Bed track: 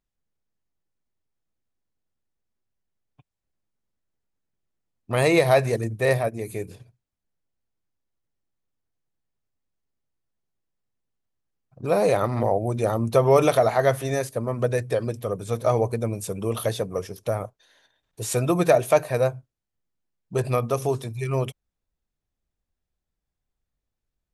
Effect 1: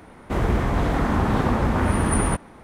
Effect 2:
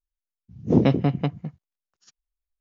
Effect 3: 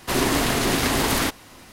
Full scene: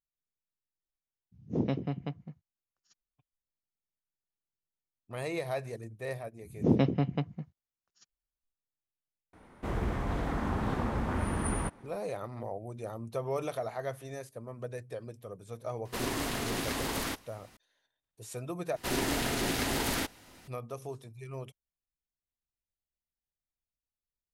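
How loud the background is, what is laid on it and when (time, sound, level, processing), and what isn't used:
bed track −16.5 dB
0:00.83: mix in 2 −12.5 dB
0:05.94: mix in 2 −7 dB
0:09.33: mix in 1 −11 dB
0:15.85: mix in 3 −12.5 dB
0:18.76: overwrite with 3 −9.5 dB + notch filter 1,100 Hz, Q 7.9

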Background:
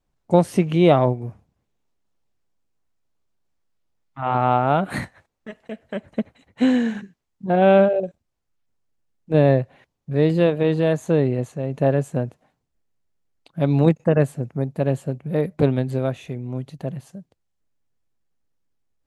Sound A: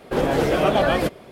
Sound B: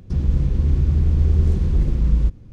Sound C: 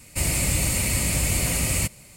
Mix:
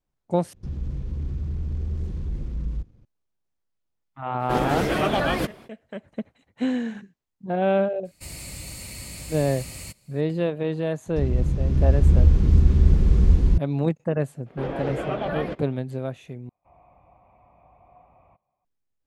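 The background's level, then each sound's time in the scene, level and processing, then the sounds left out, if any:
background −7 dB
0:00.53: overwrite with B −14 dB + leveller curve on the samples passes 1
0:04.38: mix in A −1.5 dB, fades 0.05 s + parametric band 540 Hz −5.5 dB 0.84 octaves
0:08.05: mix in C −15 dB + parametric band 4,300 Hz +8 dB 0.35 octaves
0:11.06: mix in B −4 dB + slow-attack reverb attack 740 ms, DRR −4 dB
0:14.46: mix in A −9.5 dB + low-pass filter 3,000 Hz
0:16.49: overwrite with C −9 dB + formant resonators in series a

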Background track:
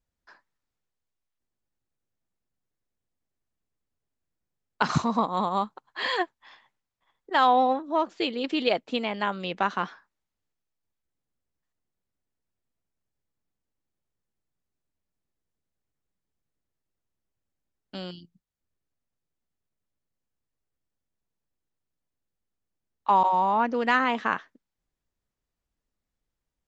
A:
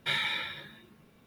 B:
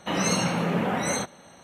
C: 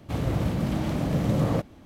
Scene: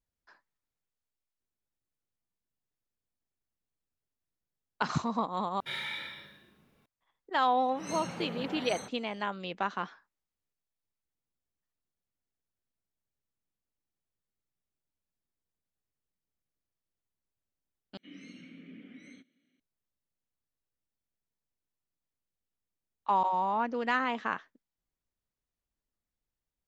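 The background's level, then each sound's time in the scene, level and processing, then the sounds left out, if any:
background track −6.5 dB
0:05.60: overwrite with A −9 dB + four-comb reverb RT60 0.65 s, combs from 30 ms, DRR 1 dB
0:07.63: mix in B −15 dB + volume swells 222 ms
0:17.97: overwrite with B −12.5 dB + formant filter i
not used: C

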